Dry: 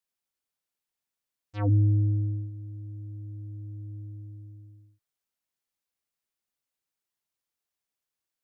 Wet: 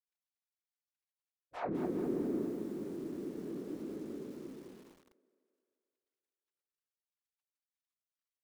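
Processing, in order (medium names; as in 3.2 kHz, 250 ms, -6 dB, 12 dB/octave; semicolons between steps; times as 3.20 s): median filter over 41 samples; spectral gate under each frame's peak -15 dB weak; treble shelf 2.2 kHz -8.5 dB; hum notches 60/120/180/240/300 Hz; reverse; compression 10:1, threshold -51 dBFS, peak gain reduction 13.5 dB; reverse; low-pass that closes with the level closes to 2.3 kHz, closed at -50.5 dBFS; whisper effect; thinning echo 175 ms, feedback 71%, high-pass 220 Hz, level -17 dB; bit-crushed delay 206 ms, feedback 55%, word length 12-bit, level -7.5 dB; trim +17 dB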